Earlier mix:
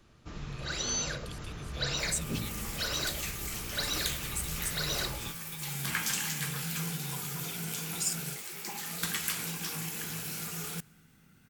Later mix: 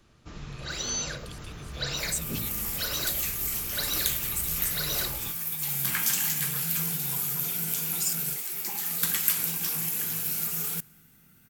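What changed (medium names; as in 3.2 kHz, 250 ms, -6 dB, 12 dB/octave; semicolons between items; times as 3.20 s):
second sound: add peaking EQ 14 kHz +13 dB 0.68 oct; master: add peaking EQ 14 kHz +2 dB 2.4 oct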